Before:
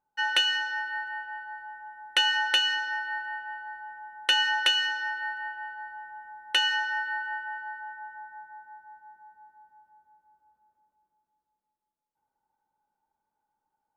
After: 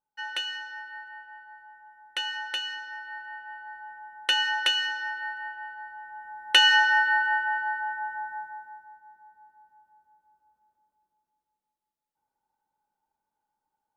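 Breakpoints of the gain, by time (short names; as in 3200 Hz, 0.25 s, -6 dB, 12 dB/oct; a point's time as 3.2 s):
2.91 s -8 dB
3.83 s -1 dB
5.97 s -1 dB
6.77 s +8.5 dB
8.36 s +8.5 dB
8.98 s -1.5 dB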